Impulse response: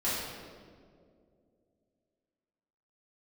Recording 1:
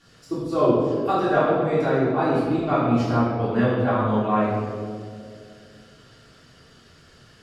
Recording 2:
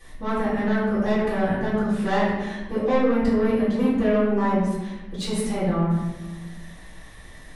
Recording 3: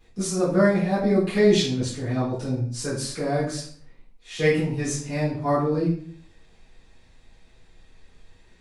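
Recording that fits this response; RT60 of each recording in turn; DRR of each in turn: 1; 2.3 s, 1.1 s, 0.50 s; -12.0 dB, -12.0 dB, -12.0 dB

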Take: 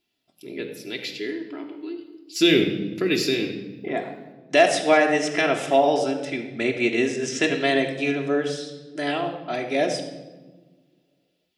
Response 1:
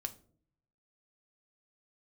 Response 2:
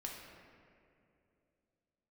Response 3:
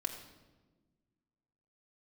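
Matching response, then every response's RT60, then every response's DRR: 3; no single decay rate, 2.6 s, no single decay rate; 5.5 dB, -1.5 dB, 1.5 dB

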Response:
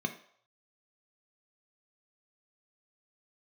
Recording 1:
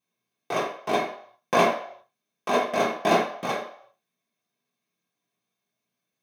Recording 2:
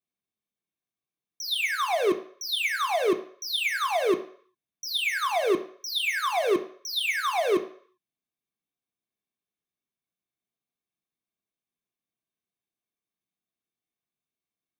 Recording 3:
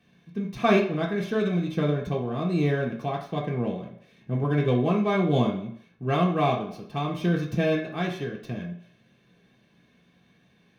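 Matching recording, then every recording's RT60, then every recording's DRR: 2; 0.65 s, 0.65 s, 0.65 s; -7.5 dB, 5.5 dB, -2.5 dB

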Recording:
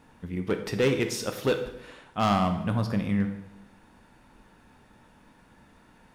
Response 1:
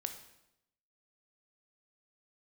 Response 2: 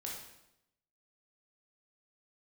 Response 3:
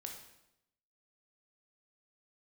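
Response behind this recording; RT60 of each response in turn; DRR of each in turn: 1; 0.85 s, 0.85 s, 0.85 s; 6.5 dB, -3.0 dB, 2.0 dB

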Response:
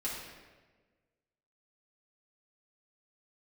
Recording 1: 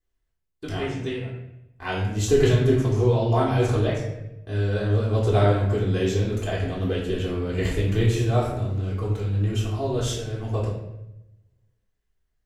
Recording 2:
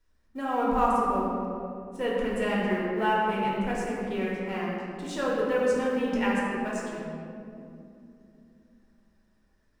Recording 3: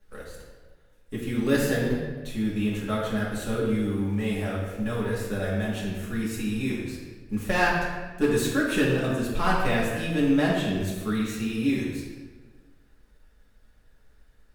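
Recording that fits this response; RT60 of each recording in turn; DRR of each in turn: 3; 0.85 s, 2.7 s, 1.4 s; -7.0 dB, -6.0 dB, -7.0 dB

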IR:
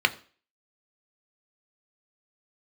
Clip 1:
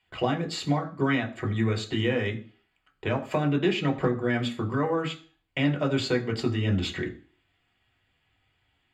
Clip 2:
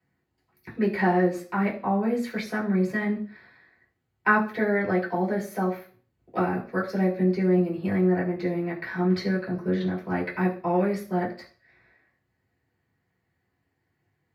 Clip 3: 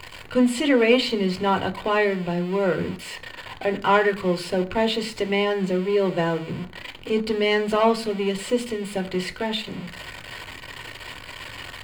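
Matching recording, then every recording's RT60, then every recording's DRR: 3; 0.40 s, 0.40 s, 0.40 s; 2.0 dB, -6.5 dB, 8.0 dB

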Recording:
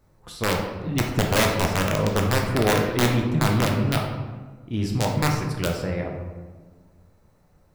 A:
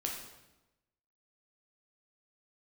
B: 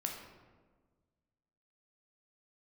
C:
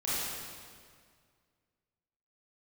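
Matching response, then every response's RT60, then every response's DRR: B; 1.0 s, 1.5 s, 1.9 s; -1.0 dB, 0.5 dB, -10.5 dB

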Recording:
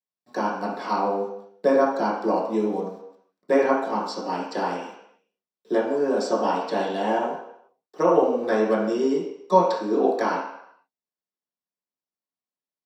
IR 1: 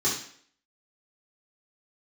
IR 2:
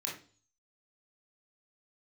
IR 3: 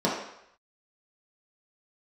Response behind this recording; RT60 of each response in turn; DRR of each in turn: 3; 0.55 s, 0.40 s, 0.75 s; -7.5 dB, -3.5 dB, -6.5 dB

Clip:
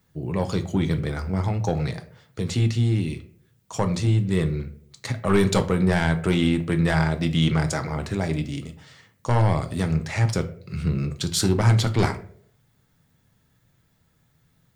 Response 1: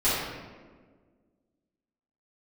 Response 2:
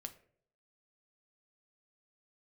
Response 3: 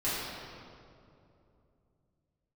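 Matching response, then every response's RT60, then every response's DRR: 2; 1.6 s, 0.60 s, 2.7 s; -14.0 dB, 6.5 dB, -12.5 dB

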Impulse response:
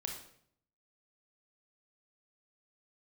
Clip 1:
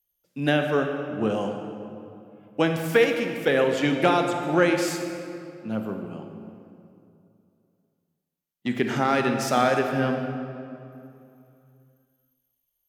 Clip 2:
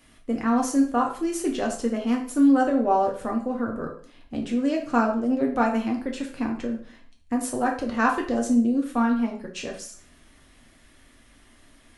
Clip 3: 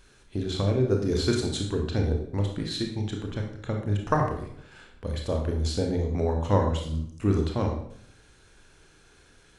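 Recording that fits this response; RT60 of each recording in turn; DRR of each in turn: 3; 2.7 s, 0.45 s, 0.65 s; 4.0 dB, 0.0 dB, 1.5 dB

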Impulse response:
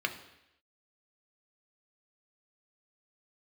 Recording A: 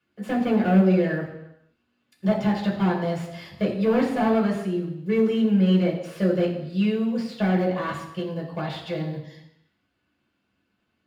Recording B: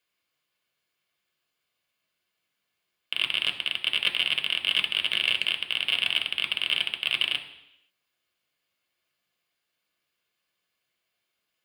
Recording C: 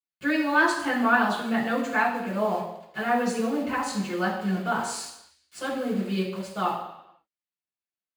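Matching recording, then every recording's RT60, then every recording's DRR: B; 0.85 s, 0.85 s, 0.85 s; -3.0 dB, 4.5 dB, -9.5 dB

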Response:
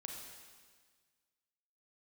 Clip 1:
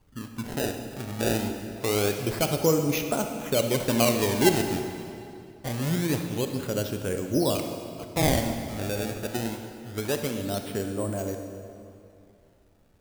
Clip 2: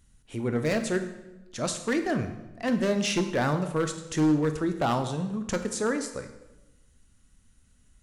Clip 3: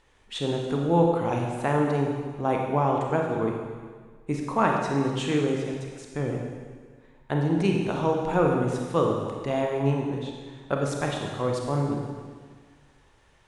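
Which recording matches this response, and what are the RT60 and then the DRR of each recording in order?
3; 2.6 s, 1.0 s, 1.6 s; 5.0 dB, 7.5 dB, 0.5 dB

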